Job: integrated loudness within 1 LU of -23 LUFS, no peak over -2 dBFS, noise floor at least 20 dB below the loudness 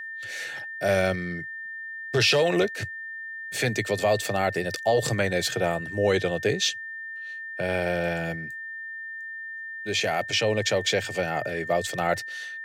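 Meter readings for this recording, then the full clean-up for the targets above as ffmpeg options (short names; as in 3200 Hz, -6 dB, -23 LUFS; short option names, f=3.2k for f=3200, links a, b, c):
steady tone 1800 Hz; tone level -34 dBFS; loudness -26.5 LUFS; peak -10.0 dBFS; loudness target -23.0 LUFS
-> -af "bandreject=f=1.8k:w=30"
-af "volume=3.5dB"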